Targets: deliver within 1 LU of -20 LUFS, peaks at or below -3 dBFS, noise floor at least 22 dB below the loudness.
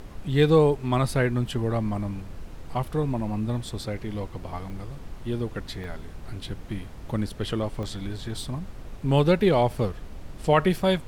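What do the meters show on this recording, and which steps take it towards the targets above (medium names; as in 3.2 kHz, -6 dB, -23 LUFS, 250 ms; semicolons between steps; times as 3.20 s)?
dropouts 3; longest dropout 1.1 ms; noise floor -41 dBFS; noise floor target -48 dBFS; loudness -26.0 LUFS; peak level -8.0 dBFS; loudness target -20.0 LUFS
-> interpolate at 4.70/5.84/7.83 s, 1.1 ms; noise print and reduce 7 dB; trim +6 dB; peak limiter -3 dBFS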